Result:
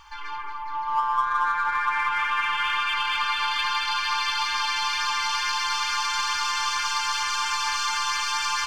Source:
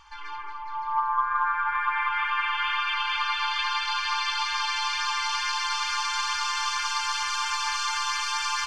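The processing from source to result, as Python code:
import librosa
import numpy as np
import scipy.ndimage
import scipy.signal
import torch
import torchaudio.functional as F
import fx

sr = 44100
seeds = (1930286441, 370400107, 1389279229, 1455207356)

p1 = 10.0 ** (-31.0 / 20.0) * np.tanh(x / 10.0 ** (-31.0 / 20.0))
p2 = x + F.gain(torch.from_numpy(p1), -5.5).numpy()
y = fx.quant_dither(p2, sr, seeds[0], bits=12, dither='none')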